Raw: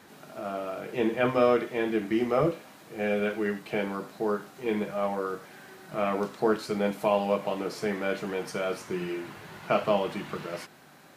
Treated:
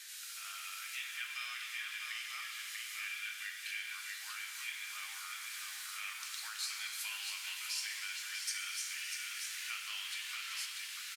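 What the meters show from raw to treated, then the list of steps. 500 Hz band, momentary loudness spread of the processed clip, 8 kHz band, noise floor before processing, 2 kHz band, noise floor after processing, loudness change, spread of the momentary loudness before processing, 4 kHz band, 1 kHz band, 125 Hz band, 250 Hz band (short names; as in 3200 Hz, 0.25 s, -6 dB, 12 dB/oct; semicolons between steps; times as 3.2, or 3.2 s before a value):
under -40 dB, 4 LU, +9.5 dB, -53 dBFS, -3.0 dB, -47 dBFS, -10.5 dB, 13 LU, +4.0 dB, -19.0 dB, under -40 dB, under -40 dB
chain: inverse Chebyshev high-pass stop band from 510 Hz, stop band 60 dB; on a send: echo 0.64 s -7.5 dB; on the sum: compressor 3:1, threshold -49 dBFS, peak gain reduction 14 dB; bell 8000 Hz +14.5 dB 2.8 oct; shimmer reverb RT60 3.7 s, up +7 st, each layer -8 dB, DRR 3.5 dB; gain -1 dB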